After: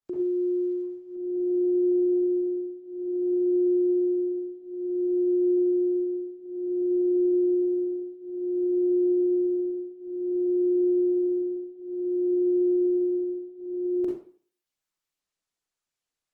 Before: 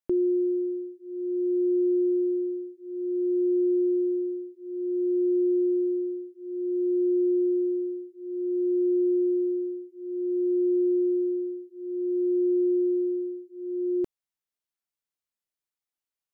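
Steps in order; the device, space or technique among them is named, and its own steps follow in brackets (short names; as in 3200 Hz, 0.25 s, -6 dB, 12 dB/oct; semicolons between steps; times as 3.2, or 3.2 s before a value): far-field microphone of a smart speaker (reverb RT60 0.45 s, pre-delay 37 ms, DRR -4 dB; HPF 150 Hz 6 dB/oct; AGC gain up to 4 dB; gain -6.5 dB; Opus 16 kbps 48000 Hz)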